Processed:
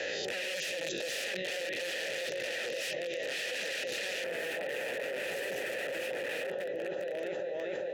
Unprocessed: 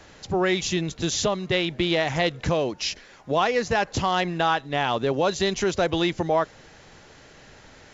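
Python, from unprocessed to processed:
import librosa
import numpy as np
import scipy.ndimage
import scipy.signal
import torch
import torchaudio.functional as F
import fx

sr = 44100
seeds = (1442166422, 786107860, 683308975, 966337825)

y = fx.spec_swells(x, sr, rise_s=0.4)
y = fx.echo_opening(y, sr, ms=407, hz=200, octaves=2, feedback_pct=70, wet_db=-6)
y = (np.mod(10.0 ** (21.0 / 20.0) * y + 1.0, 2.0) - 1.0) / 10.0 ** (21.0 / 20.0)
y = fx.peak_eq(y, sr, hz=4900.0, db=fx.steps((0.0, 2.5), (4.24, -10.5)), octaves=2.0)
y = fx.vowel_filter(y, sr, vowel='e')
y = fx.high_shelf(y, sr, hz=3600.0, db=11.5)
y = fx.env_flatten(y, sr, amount_pct=100)
y = F.gain(torch.from_numpy(y), -4.0).numpy()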